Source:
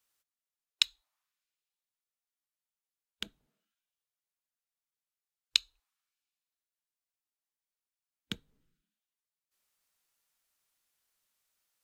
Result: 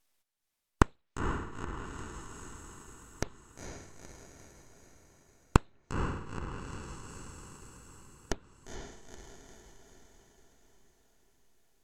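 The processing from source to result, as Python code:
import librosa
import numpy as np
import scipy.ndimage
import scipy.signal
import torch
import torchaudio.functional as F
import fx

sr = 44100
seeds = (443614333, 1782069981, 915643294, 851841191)

y = np.abs(x)
y = fx.echo_diffused(y, sr, ms=474, feedback_pct=56, wet_db=-5.5)
y = fx.env_lowpass_down(y, sr, base_hz=2300.0, full_db=-39.0)
y = F.gain(torch.from_numpy(y), 6.5).numpy()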